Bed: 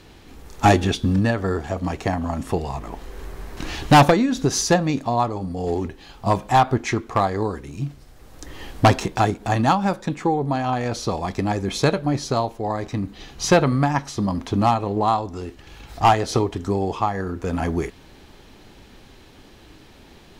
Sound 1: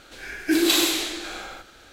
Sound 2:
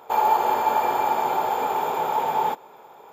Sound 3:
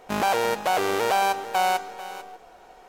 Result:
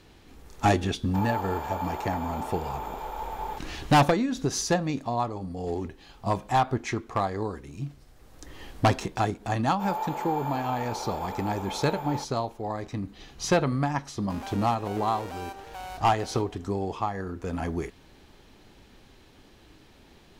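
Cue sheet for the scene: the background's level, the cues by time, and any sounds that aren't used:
bed -7 dB
1.04 s: add 2 -12 dB
9.70 s: add 2 -12.5 dB
14.20 s: add 3 -11 dB + peak limiter -19.5 dBFS
not used: 1

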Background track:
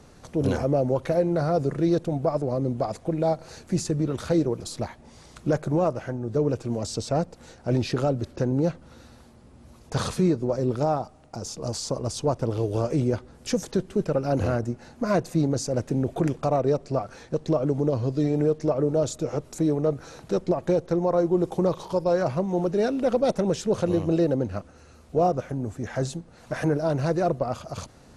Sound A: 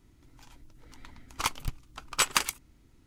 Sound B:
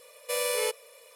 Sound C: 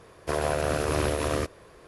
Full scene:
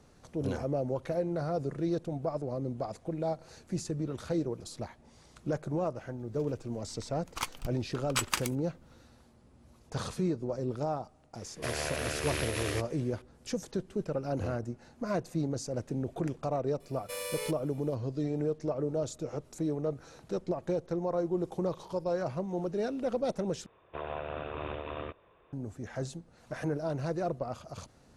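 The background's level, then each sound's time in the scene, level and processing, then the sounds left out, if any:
background track -9 dB
5.97 s: add A -5.5 dB
11.35 s: add C -9.5 dB + resonant high shelf 1.5 kHz +7.5 dB, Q 1.5
16.80 s: add B -9 dB
23.66 s: replace with C -8 dB + rippled Chebyshev low-pass 3.7 kHz, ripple 6 dB

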